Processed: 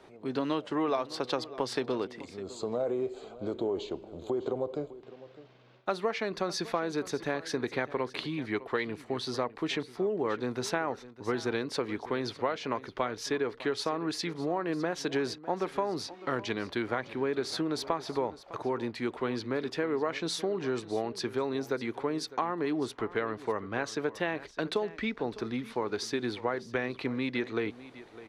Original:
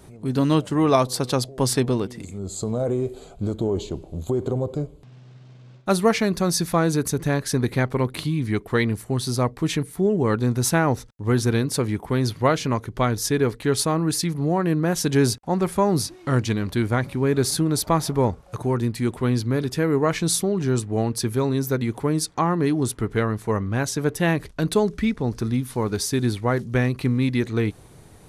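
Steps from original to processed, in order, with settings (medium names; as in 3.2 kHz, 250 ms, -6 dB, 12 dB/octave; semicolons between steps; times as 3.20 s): three-band isolator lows -19 dB, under 300 Hz, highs -24 dB, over 4.8 kHz; compression, threshold -25 dBFS, peak gain reduction 11.5 dB; on a send: delay 606 ms -17 dB; on the sum: trim -1.5 dB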